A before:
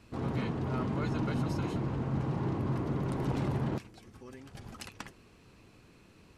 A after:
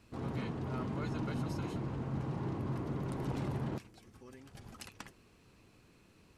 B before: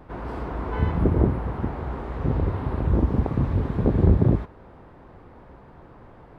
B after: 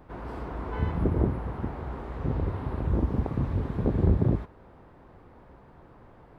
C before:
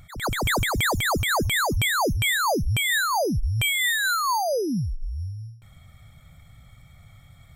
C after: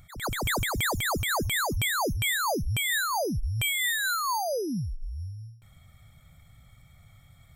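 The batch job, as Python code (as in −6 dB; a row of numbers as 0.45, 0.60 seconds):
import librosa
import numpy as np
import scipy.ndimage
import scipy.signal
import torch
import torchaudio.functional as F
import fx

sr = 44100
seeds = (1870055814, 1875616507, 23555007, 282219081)

y = fx.high_shelf(x, sr, hz=7500.0, db=4.5)
y = y * librosa.db_to_amplitude(-5.0)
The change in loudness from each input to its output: −5.0, −5.0, −4.5 LU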